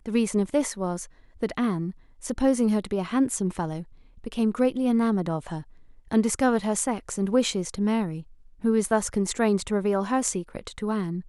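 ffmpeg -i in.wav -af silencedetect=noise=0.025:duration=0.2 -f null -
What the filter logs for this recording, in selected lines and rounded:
silence_start: 1.04
silence_end: 1.43 | silence_duration: 0.38
silence_start: 1.91
silence_end: 2.24 | silence_duration: 0.33
silence_start: 3.82
silence_end: 4.24 | silence_duration: 0.42
silence_start: 5.61
silence_end: 6.11 | silence_duration: 0.51
silence_start: 8.20
silence_end: 8.64 | silence_duration: 0.44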